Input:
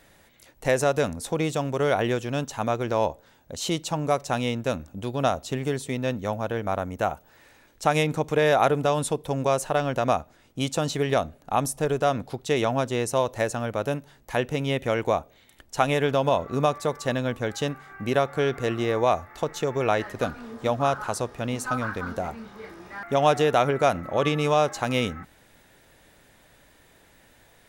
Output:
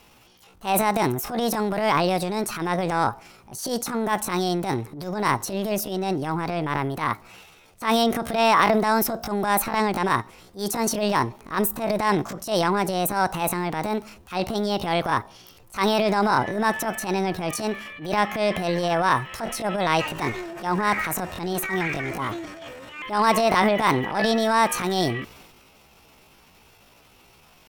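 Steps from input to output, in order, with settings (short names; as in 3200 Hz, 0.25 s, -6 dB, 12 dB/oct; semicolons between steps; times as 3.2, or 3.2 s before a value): transient shaper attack -12 dB, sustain +7 dB; pitch shift +7 st; gain +3 dB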